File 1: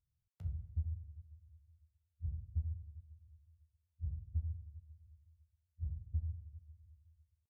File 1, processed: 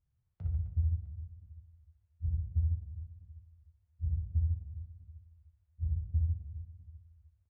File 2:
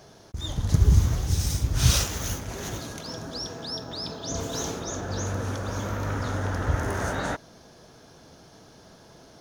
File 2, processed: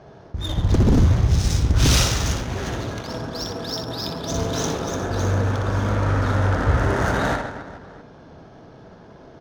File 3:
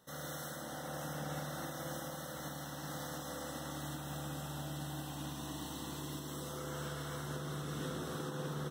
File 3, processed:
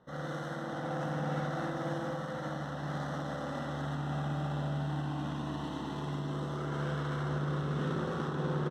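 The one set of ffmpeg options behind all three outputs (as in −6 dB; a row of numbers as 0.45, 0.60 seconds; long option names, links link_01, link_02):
-af "aecho=1:1:60|144|261.6|426.2|656.7:0.631|0.398|0.251|0.158|0.1,aeval=exprs='0.178*(abs(mod(val(0)/0.178+3,4)-2)-1)':channel_layout=same,adynamicsmooth=sensitivity=7:basefreq=1900,volume=5.5dB"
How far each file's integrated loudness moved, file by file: +7.5, +6.0, +6.5 LU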